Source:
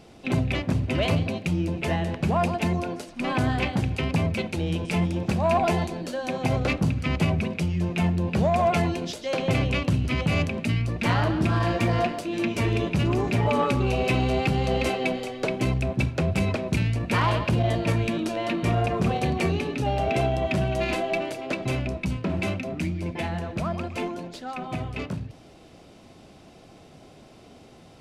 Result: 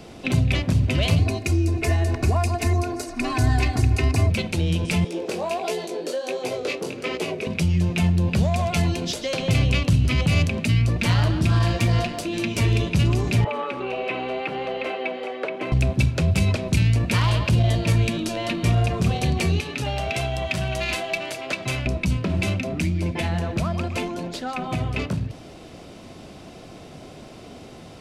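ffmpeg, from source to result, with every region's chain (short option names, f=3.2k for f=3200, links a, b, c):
-filter_complex "[0:a]asettb=1/sr,asplit=3[a][b][c];[a]atrim=end=1.184[d];[b]atrim=start=1.18:end=4.3,asetpts=PTS-STARTPTS,afade=t=in:d=0.004:c=qsin,afade=t=out:st=3.116:d=0.004:c=qsin,equalizer=f=3.2k:w=3.2:g=-13,aecho=1:1:2.8:0.95,atrim=end_sample=137592[e];[c]atrim=start=4.296[f];[d][e]acrossfade=d=0.004:c1=hsin:c2=qsin[g];[g][f]acrossfade=d=0.004:c1=qsin:c2=hsin,asettb=1/sr,asplit=3[h][i][j];[h]atrim=end=5.044[k];[i]atrim=start=5.04:end=7.47,asetpts=PTS-STARTPTS,afade=t=in:d=0.004:c=qsin,afade=t=out:st=2.426:d=0.004:c=qsin,highpass=f=420:t=q:w=5.1,flanger=delay=16:depth=7.1:speed=1.4[l];[j]atrim=start=7.466[m];[k][l]acrossfade=d=0.004:c1=hsin:c2=qsin[n];[n][m]acrossfade=d=0.004:c1=qsin:c2=hsin,asettb=1/sr,asplit=3[o][p][q];[o]atrim=end=13.444[r];[p]atrim=start=13.44:end=15.72,asetpts=PTS-STARTPTS,afade=t=in:d=0.004:c=qsin,afade=t=out:st=2.276:d=0.004:c=qsin,highpass=140,acrossover=split=320 2900:gain=0.0794 1 0.2[s][t][u];[s][t][u]amix=inputs=3:normalize=0,acrossover=split=3600[v][w];[w]acompressor=threshold=-59dB:ratio=4:attack=1:release=60[x];[v][x]amix=inputs=2:normalize=0[y];[q]atrim=start=15.716[z];[r][y]acrossfade=d=0.004:c1=hsin:c2=qsin[aa];[aa][z]acrossfade=d=0.004:c1=qsin:c2=hsin,asettb=1/sr,asplit=3[ab][ac][ad];[ab]atrim=end=19.604[ae];[ac]atrim=start=19.6:end=21.86,asetpts=PTS-STARTPTS,afade=t=in:d=0.004:c=qsin,afade=t=out:st=2.256:d=0.004:c=qsin,highpass=f=100:p=1,equalizer=f=310:t=o:w=2.6:g=-10.5[af];[ad]atrim=start=21.856[ag];[ae][af]acrossfade=d=0.004:c1=hsin:c2=qsin[ah];[ah][ag]acrossfade=d=0.004:c1=qsin:c2=hsin,bandreject=f=810:w=25,acrossover=split=140|3000[ai][aj][ak];[aj]acompressor=threshold=-34dB:ratio=6[al];[ai][al][ak]amix=inputs=3:normalize=0,volume=8dB"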